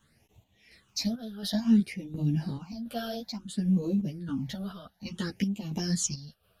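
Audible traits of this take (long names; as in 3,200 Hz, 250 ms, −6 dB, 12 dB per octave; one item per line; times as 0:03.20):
phaser sweep stages 8, 0.58 Hz, lowest notch 260–1,600 Hz
chopped level 1.4 Hz, depth 60%, duty 60%
a shimmering, thickened sound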